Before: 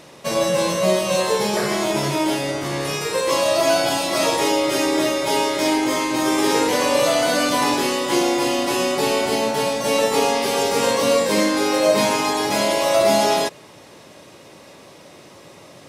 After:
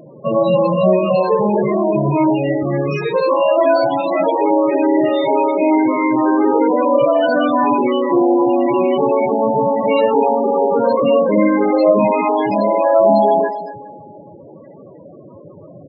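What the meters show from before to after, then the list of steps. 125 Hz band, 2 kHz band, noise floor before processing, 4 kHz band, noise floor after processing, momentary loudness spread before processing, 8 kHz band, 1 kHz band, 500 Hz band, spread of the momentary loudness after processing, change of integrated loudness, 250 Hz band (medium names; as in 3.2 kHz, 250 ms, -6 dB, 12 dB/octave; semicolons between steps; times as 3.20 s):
+6.5 dB, -3.5 dB, -45 dBFS, -12.0 dB, -40 dBFS, 4 LU, under -35 dB, +5.0 dB, +5.5 dB, 4 LU, +4.0 dB, +6.5 dB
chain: tone controls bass +3 dB, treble -7 dB; on a send: delay 241 ms -16 dB; on the sum: Schroeder reverb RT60 2.5 s, combs from 31 ms, DRR 14 dB; in parallel at -2.5 dB: peak limiter -13.5 dBFS, peak gain reduction 8.5 dB; on the sum: companded quantiser 8-bit; loudest bins only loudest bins 16; trim +2 dB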